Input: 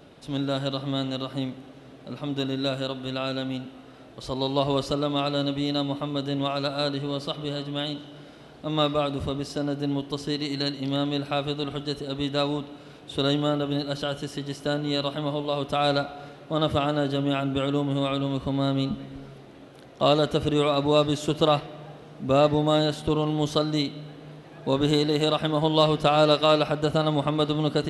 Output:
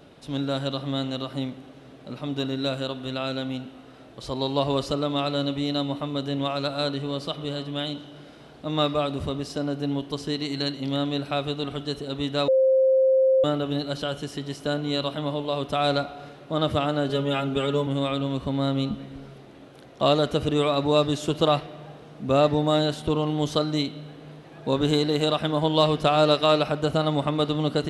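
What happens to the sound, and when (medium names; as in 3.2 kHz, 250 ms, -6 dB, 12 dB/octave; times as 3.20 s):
12.48–13.44 s: bleep 527 Hz -15.5 dBFS
17.09–17.87 s: comb 4.9 ms, depth 82%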